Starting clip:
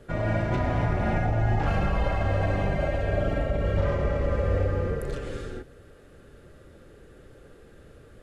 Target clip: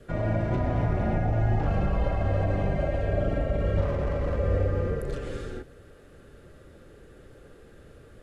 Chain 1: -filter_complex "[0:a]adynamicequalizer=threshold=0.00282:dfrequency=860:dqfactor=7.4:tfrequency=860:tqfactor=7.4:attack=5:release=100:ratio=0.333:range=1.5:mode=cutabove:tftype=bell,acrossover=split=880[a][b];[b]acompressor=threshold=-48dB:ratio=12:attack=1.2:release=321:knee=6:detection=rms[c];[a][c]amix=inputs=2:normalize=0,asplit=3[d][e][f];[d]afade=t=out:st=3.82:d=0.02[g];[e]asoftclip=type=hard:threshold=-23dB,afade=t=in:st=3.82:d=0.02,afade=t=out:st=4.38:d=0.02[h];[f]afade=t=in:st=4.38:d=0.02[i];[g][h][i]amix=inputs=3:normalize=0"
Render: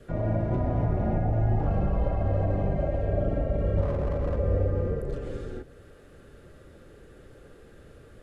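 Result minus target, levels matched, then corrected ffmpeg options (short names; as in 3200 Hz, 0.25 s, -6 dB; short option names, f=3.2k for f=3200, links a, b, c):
compressor: peak gain reduction +10 dB
-filter_complex "[0:a]adynamicequalizer=threshold=0.00282:dfrequency=860:dqfactor=7.4:tfrequency=860:tqfactor=7.4:attack=5:release=100:ratio=0.333:range=1.5:mode=cutabove:tftype=bell,acrossover=split=880[a][b];[b]acompressor=threshold=-37dB:ratio=12:attack=1.2:release=321:knee=6:detection=rms[c];[a][c]amix=inputs=2:normalize=0,asplit=3[d][e][f];[d]afade=t=out:st=3.82:d=0.02[g];[e]asoftclip=type=hard:threshold=-23dB,afade=t=in:st=3.82:d=0.02,afade=t=out:st=4.38:d=0.02[h];[f]afade=t=in:st=4.38:d=0.02[i];[g][h][i]amix=inputs=3:normalize=0"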